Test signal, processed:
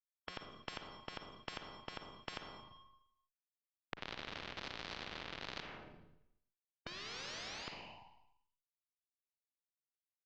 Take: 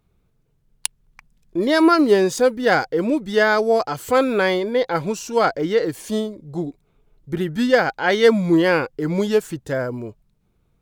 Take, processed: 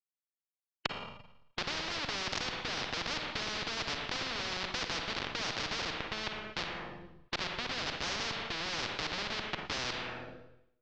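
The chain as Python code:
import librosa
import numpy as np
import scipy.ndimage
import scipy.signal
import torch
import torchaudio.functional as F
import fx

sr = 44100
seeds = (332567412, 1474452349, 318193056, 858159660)

p1 = scipy.signal.sosfilt(scipy.signal.butter(2, 400.0, 'highpass', fs=sr, output='sos'), x)
p2 = fx.level_steps(p1, sr, step_db=23)
p3 = p1 + (p2 * 10.0 ** (-2.5 / 20.0))
p4 = fx.leveller(p3, sr, passes=1)
p5 = fx.rider(p4, sr, range_db=4, speed_s=0.5)
p6 = fx.schmitt(p5, sr, flips_db=-18.0)
p7 = fx.rotary(p6, sr, hz=1.2)
p8 = scipy.ndimage.gaussian_filter1d(p7, 2.6, mode='constant')
p9 = fx.rev_schroeder(p8, sr, rt60_s=0.78, comb_ms=38, drr_db=8.5)
p10 = fx.spectral_comp(p9, sr, ratio=10.0)
y = p10 * 10.0 ** (-6.5 / 20.0)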